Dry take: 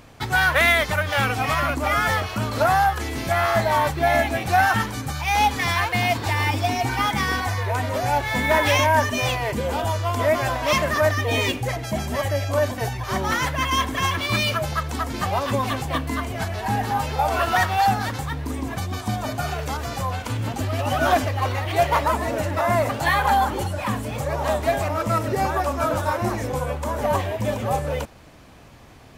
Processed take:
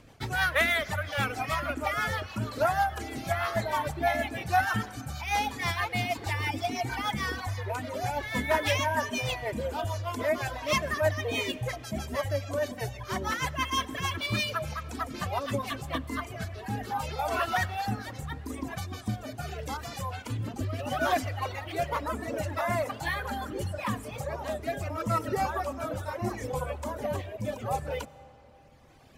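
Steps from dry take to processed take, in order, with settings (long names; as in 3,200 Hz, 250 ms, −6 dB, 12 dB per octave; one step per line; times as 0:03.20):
reverb reduction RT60 1.6 s
rotating-speaker cabinet horn 6.3 Hz, later 0.75 Hz, at 0:15.50
convolution reverb RT60 3.5 s, pre-delay 55 ms, DRR 18 dB
level −4 dB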